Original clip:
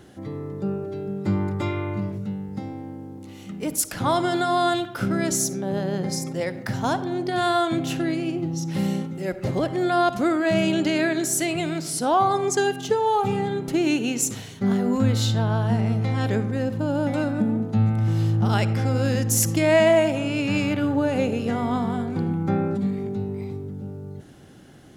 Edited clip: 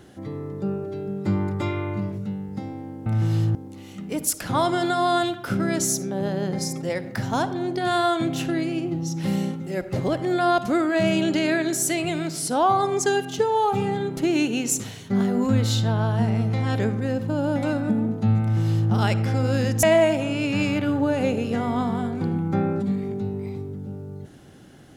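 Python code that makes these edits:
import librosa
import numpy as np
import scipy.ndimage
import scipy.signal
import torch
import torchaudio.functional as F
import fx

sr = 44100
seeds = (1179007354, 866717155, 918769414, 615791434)

y = fx.edit(x, sr, fx.duplicate(start_s=17.92, length_s=0.49, to_s=3.06),
    fx.cut(start_s=19.34, length_s=0.44), tone=tone)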